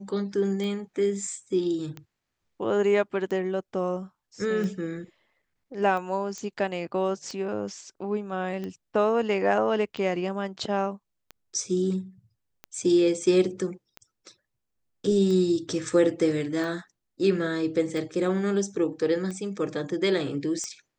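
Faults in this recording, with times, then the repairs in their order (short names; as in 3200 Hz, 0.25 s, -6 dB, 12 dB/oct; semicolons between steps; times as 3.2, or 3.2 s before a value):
tick 45 rpm -23 dBFS
6.38 pop -23 dBFS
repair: de-click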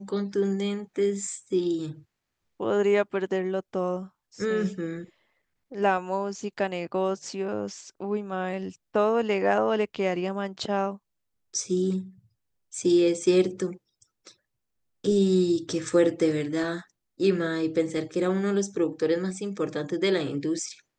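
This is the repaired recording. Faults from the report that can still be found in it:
none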